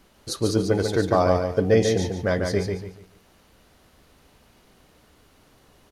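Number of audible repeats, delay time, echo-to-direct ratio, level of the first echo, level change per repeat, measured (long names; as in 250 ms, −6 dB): 3, 144 ms, −4.5 dB, −5.0 dB, −11.0 dB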